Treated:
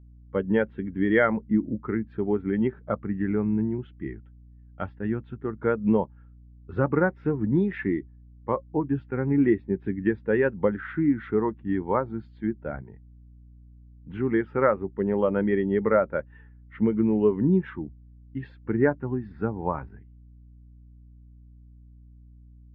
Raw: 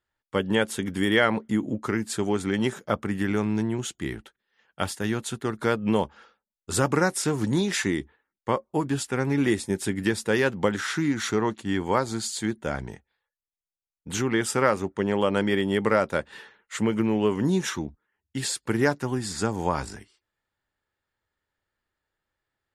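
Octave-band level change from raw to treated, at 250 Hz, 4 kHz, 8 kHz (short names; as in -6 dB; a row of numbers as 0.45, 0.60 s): +1.0 dB, under -20 dB, under -40 dB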